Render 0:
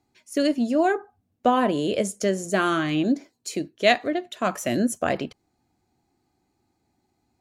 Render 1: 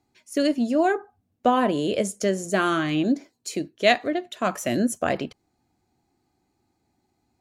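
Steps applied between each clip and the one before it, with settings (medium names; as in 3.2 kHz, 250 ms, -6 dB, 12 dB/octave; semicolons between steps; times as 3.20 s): no audible change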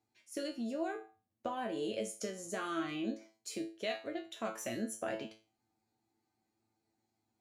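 bass shelf 95 Hz -11.5 dB; compression 6:1, threshold -24 dBFS, peak gain reduction 10.5 dB; feedback comb 110 Hz, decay 0.33 s, harmonics all, mix 90%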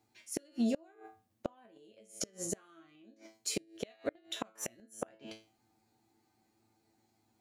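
inverted gate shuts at -30 dBFS, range -31 dB; trim +8.5 dB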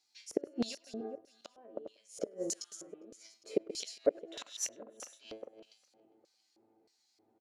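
backward echo that repeats 202 ms, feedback 50%, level -12 dB; LFO band-pass square 1.6 Hz 470–4900 Hz; speakerphone echo 100 ms, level -24 dB; trim +11 dB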